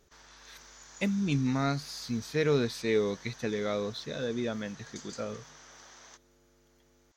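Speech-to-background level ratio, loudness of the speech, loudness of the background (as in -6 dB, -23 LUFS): 18.5 dB, -32.0 LUFS, -50.5 LUFS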